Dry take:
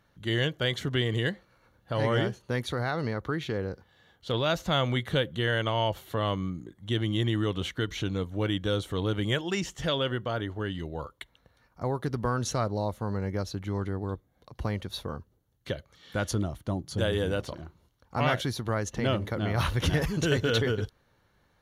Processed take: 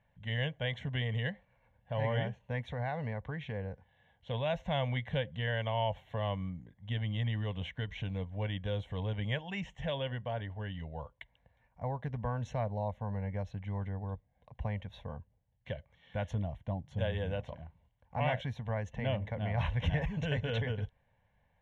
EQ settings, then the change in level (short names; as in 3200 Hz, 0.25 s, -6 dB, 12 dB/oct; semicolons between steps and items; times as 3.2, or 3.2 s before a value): air absorption 190 m; fixed phaser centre 1300 Hz, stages 6; -2.5 dB